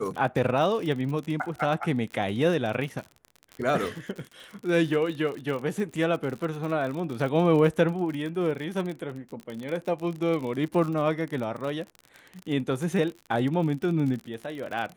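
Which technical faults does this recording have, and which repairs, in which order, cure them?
crackle 52/s -32 dBFS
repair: de-click

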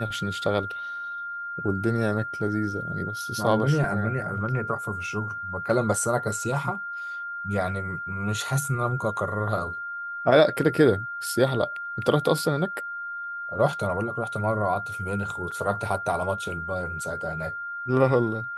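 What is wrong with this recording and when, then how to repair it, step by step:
tone 1400 Hz -31 dBFS
15.51–15.52 gap 6 ms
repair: notch 1400 Hz, Q 30; interpolate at 15.51, 6 ms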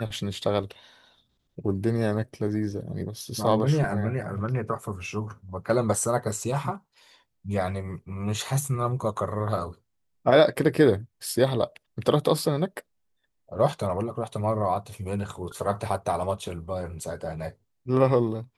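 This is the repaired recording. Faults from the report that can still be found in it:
none

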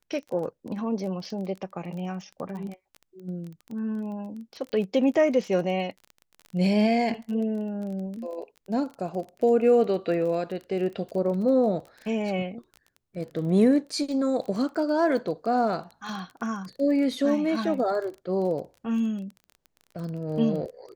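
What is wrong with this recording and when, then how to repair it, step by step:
crackle 23/s -34 dBFS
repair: de-click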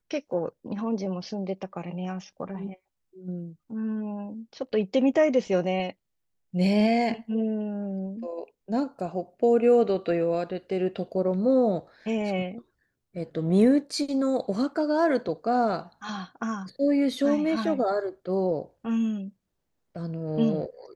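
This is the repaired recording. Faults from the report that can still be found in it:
none

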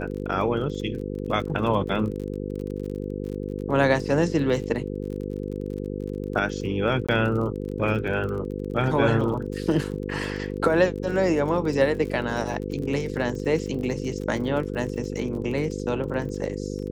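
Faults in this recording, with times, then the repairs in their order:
buzz 50 Hz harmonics 10 -31 dBFS
crackle 35/s -33 dBFS
7.07–7.09 gap 16 ms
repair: de-click; de-hum 50 Hz, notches 10; interpolate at 7.07, 16 ms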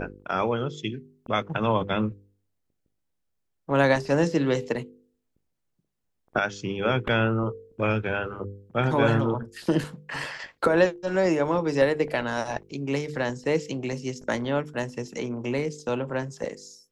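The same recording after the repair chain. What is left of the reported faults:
none

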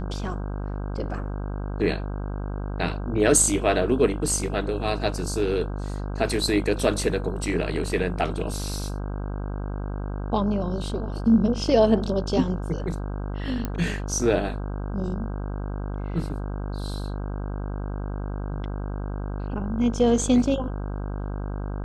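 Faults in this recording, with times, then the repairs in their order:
buzz 50 Hz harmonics 32 -30 dBFS
13.65 pop -14 dBFS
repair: de-click; de-hum 50 Hz, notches 32

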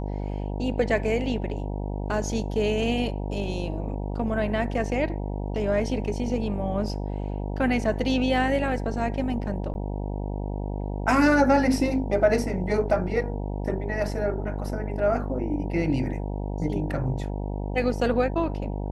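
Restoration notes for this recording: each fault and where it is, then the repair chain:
buzz 50 Hz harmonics 19 -30 dBFS
9.74–9.75 gap 11 ms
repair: de-hum 50 Hz, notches 19; interpolate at 9.74, 11 ms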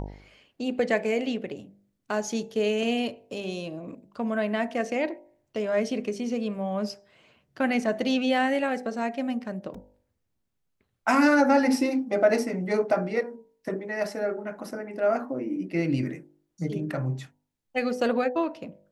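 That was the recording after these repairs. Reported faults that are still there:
none

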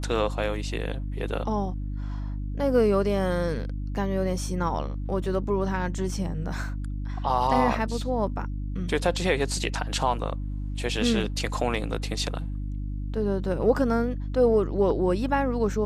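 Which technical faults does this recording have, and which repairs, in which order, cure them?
hum 50 Hz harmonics 6 -31 dBFS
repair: de-hum 50 Hz, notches 6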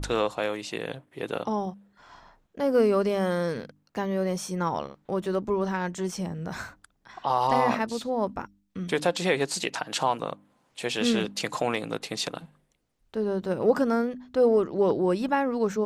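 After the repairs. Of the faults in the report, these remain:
none

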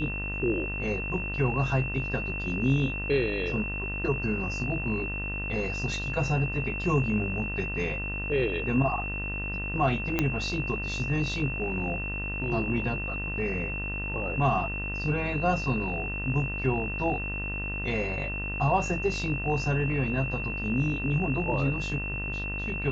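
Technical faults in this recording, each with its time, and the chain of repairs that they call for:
buzz 50 Hz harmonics 40 -35 dBFS
tone 2700 Hz -33 dBFS
10.19 pop -11 dBFS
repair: de-click; de-hum 50 Hz, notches 40; notch 2700 Hz, Q 30

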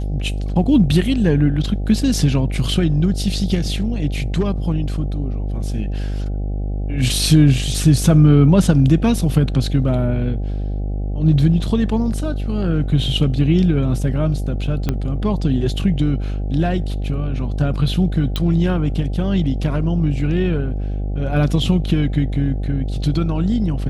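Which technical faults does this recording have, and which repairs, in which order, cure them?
buzz 50 Hz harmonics 16 -22 dBFS
14.89 pop -7 dBFS
18.36 pop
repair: de-click; de-hum 50 Hz, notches 16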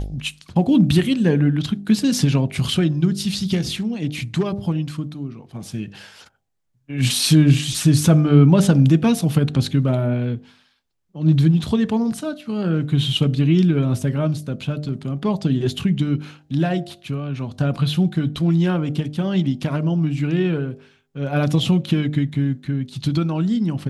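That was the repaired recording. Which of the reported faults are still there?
14.89 pop

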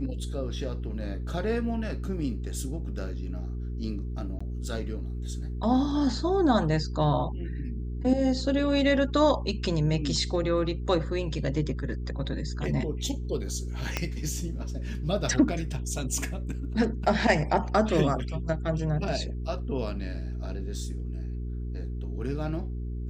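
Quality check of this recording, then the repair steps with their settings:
hum 60 Hz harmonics 7 -33 dBFS
4.39–4.41 gap 15 ms
13.97 pop -12 dBFS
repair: de-click; de-hum 60 Hz, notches 7; interpolate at 4.39, 15 ms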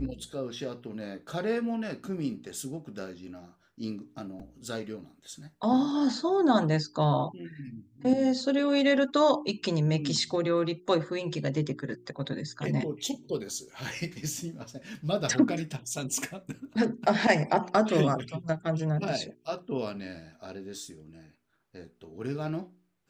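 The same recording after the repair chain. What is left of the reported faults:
13.97 pop

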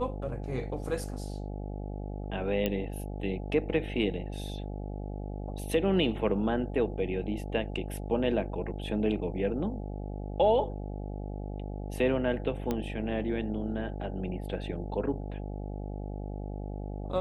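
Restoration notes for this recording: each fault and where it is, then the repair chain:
buzz 50 Hz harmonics 17 -37 dBFS
2.66 pop -16 dBFS
12.71 pop -17 dBFS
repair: de-click; de-hum 50 Hz, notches 17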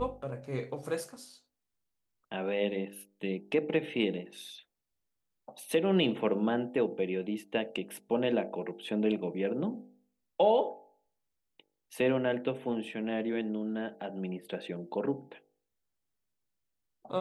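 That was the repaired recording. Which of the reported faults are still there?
12.71 pop

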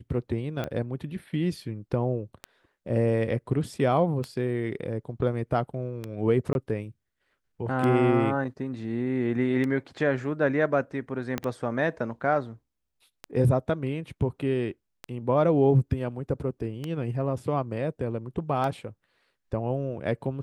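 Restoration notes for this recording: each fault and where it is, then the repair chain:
tick 33 1/3 rpm -18 dBFS
6.53–6.55 gap 21 ms
11.38 pop -14 dBFS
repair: de-click; interpolate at 6.53, 21 ms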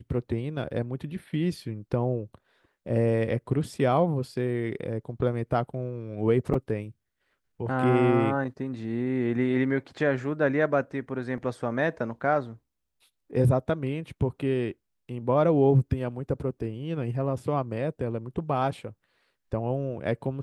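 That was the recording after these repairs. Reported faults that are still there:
11.38 pop

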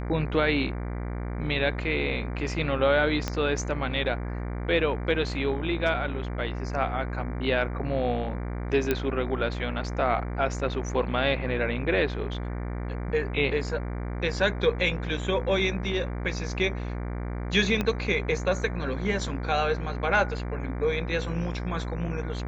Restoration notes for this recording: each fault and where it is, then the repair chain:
buzz 60 Hz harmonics 39 -32 dBFS
3.28 pop -13 dBFS
8.91 pop -11 dBFS
17.81 pop -13 dBFS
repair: de-click; de-hum 60 Hz, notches 39

